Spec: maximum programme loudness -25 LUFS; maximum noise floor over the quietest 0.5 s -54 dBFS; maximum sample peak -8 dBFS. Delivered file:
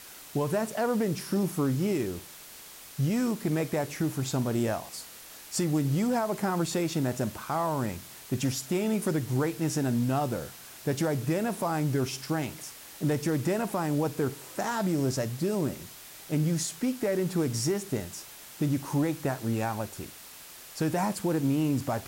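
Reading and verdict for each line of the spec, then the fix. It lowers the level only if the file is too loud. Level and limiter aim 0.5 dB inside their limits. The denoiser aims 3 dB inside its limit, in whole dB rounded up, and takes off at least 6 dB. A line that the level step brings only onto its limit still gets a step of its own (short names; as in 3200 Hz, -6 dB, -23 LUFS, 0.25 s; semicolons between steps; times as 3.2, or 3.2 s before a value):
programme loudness -29.5 LUFS: OK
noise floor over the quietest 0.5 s -47 dBFS: fail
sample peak -18.0 dBFS: OK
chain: denoiser 10 dB, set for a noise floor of -47 dBFS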